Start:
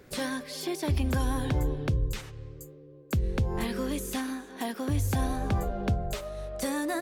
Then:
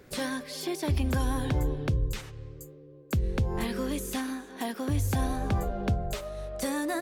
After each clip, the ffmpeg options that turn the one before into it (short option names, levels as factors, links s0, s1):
-af anull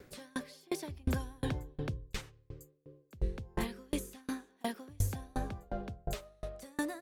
-af "aeval=exprs='val(0)*pow(10,-34*if(lt(mod(2.8*n/s,1),2*abs(2.8)/1000),1-mod(2.8*n/s,1)/(2*abs(2.8)/1000),(mod(2.8*n/s,1)-2*abs(2.8)/1000)/(1-2*abs(2.8)/1000))/20)':c=same,volume=1.12"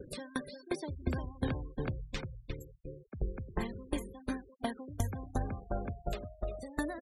-af "acompressor=threshold=0.00355:ratio=2,aecho=1:1:352|704|1056|1408:0.473|0.156|0.0515|0.017,afftfilt=real='re*gte(hypot(re,im),0.00282)':imag='im*gte(hypot(re,im),0.00282)':win_size=1024:overlap=0.75,volume=2.99"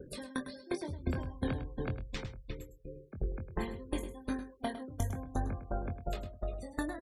-filter_complex "[0:a]asplit=2[s0][s1];[s1]adelay=23,volume=0.422[s2];[s0][s2]amix=inputs=2:normalize=0,aecho=1:1:104:0.251,volume=0.841"